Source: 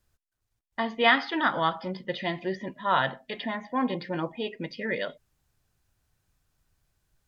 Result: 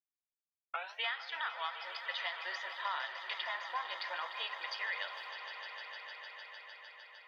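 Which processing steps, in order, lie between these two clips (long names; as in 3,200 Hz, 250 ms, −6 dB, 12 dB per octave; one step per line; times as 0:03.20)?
turntable start at the beginning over 1.04 s
downward expander −49 dBFS
Bessel high-pass filter 1,200 Hz, order 6
downward compressor 6 to 1, threshold −39 dBFS, peak gain reduction 19.5 dB
on a send: echo that builds up and dies away 152 ms, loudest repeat 5, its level −13.5 dB
on the sum: level +3 dB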